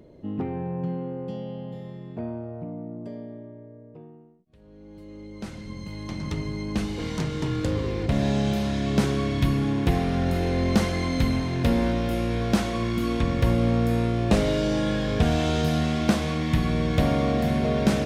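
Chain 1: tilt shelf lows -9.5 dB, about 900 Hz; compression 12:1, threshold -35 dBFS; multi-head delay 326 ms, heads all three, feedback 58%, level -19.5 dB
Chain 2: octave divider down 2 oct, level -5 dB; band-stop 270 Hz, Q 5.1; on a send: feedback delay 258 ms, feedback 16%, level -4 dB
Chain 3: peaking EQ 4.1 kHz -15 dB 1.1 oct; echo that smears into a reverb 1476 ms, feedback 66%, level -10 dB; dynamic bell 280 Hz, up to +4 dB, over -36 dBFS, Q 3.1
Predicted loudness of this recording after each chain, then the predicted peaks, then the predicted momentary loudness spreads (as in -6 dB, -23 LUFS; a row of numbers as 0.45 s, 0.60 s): -38.0 LUFS, -23.5 LUFS, -23.5 LUFS; -18.5 dBFS, -6.5 dBFS, -7.0 dBFS; 8 LU, 15 LU, 17 LU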